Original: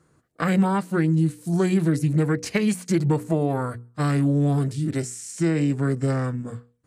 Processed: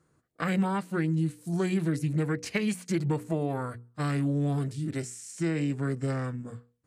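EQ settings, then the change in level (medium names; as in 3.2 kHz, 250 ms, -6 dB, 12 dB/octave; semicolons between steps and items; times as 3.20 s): dynamic bell 2.6 kHz, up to +4 dB, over -44 dBFS, Q 0.99; -7.0 dB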